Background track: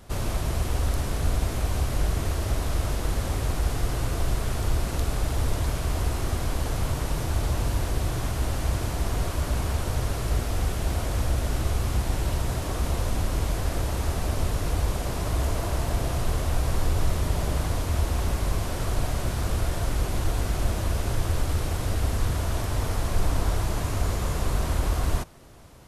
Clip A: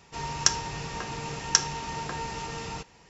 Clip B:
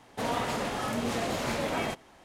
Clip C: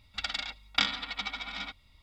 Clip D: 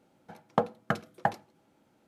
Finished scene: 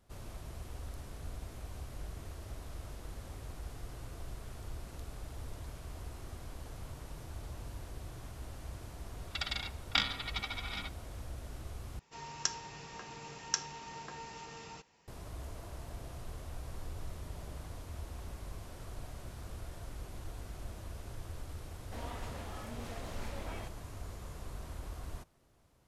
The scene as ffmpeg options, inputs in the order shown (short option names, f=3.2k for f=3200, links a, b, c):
-filter_complex "[0:a]volume=-19dB[a];[1:a]lowshelf=f=130:g=-7[b];[a]asplit=2[c][d];[c]atrim=end=11.994[e];[b]atrim=end=3.09,asetpts=PTS-STARTPTS,volume=-11.5dB[f];[d]atrim=start=15.076[g];[3:a]atrim=end=2.02,asetpts=PTS-STARTPTS,volume=-3.5dB,afade=t=in:d=0.004:c=hsin,afade=t=out:st=2.016:d=0.004:c=hsin,adelay=9170[h];[2:a]atrim=end=2.24,asetpts=PTS-STARTPTS,volume=-15.5dB,afade=t=in:d=0.004:c=hsin,afade=t=out:st=2.236:d=0.004:c=hsin,adelay=21740[i];[e][f]acrossfade=d=0.004:c1=hsin:c2=hsin[j];[j][g]acrossfade=d=0.004:c1=hsin:c2=hsin[k];[k][h][i]amix=inputs=3:normalize=0"